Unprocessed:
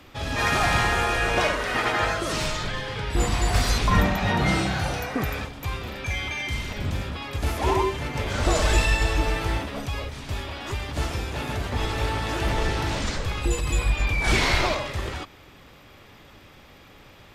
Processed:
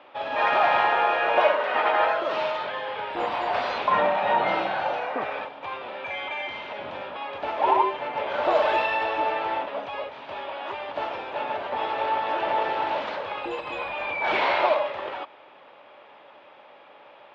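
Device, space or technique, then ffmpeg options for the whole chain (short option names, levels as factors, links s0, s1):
phone earpiece: -af "highpass=470,equalizer=f=590:t=q:w=4:g=9,equalizer=f=890:t=q:w=4:g=8,equalizer=f=2000:t=q:w=4:g=-4,lowpass=f=3100:w=0.5412,lowpass=f=3100:w=1.3066"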